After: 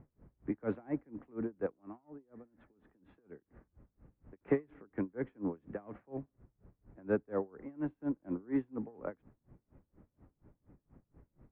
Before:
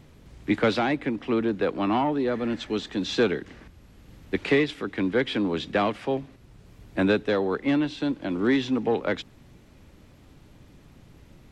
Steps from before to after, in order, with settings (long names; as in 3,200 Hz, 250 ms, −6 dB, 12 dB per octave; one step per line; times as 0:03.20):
Bessel low-pass filter 1,100 Hz, order 6
0:01.66–0:04.41: downward compressor 12 to 1, threshold −37 dBFS, peak gain reduction 19.5 dB
tremolo with a sine in dB 4.2 Hz, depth 29 dB
level −5.5 dB